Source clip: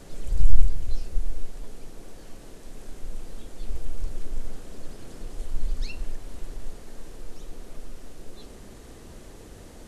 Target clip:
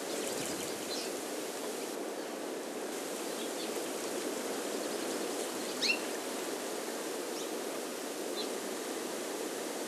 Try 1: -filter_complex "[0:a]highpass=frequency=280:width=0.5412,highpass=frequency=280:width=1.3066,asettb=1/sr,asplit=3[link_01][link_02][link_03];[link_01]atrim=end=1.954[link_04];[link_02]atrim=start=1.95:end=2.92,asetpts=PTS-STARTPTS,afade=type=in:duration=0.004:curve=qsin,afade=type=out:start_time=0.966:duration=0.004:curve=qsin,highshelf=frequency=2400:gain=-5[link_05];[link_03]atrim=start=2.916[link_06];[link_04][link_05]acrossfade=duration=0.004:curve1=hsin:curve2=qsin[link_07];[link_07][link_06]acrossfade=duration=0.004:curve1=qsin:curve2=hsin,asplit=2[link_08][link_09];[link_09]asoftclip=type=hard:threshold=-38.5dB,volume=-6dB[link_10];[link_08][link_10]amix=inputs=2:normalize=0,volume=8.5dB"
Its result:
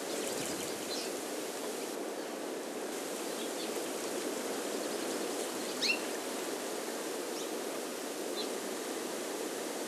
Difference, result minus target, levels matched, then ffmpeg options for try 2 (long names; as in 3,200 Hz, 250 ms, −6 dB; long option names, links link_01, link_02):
hard clipping: distortion +37 dB
-filter_complex "[0:a]highpass=frequency=280:width=0.5412,highpass=frequency=280:width=1.3066,asettb=1/sr,asplit=3[link_01][link_02][link_03];[link_01]atrim=end=1.954[link_04];[link_02]atrim=start=1.95:end=2.92,asetpts=PTS-STARTPTS,afade=type=in:duration=0.004:curve=qsin,afade=type=out:start_time=0.966:duration=0.004:curve=qsin,highshelf=frequency=2400:gain=-5[link_05];[link_03]atrim=start=2.916[link_06];[link_04][link_05]acrossfade=duration=0.004:curve1=hsin:curve2=qsin[link_07];[link_07][link_06]acrossfade=duration=0.004:curve1=qsin:curve2=hsin,asplit=2[link_08][link_09];[link_09]asoftclip=type=hard:threshold=-30.5dB,volume=-6dB[link_10];[link_08][link_10]amix=inputs=2:normalize=0,volume=8.5dB"